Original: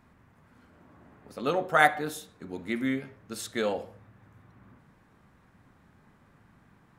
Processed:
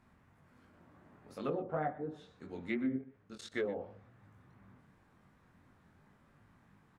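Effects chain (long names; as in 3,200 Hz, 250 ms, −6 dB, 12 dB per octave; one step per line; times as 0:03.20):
treble cut that deepens with the level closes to 470 Hz, closed at −24.5 dBFS
dynamic equaliser 2,300 Hz, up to +5 dB, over −47 dBFS, Q 1.1
0:02.96–0:03.52: output level in coarse steps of 21 dB
chorus effect 2.8 Hz, delay 19.5 ms, depth 4.5 ms
on a send: single-tap delay 124 ms −18.5 dB
on the sum: level −2.5 dB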